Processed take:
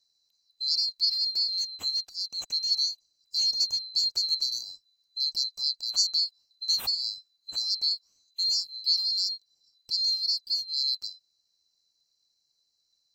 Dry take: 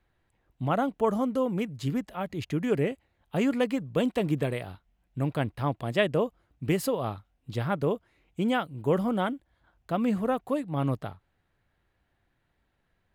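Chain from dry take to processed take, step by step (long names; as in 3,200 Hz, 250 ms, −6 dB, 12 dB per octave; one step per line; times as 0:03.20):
neighbouring bands swapped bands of 4,000 Hz
level −1 dB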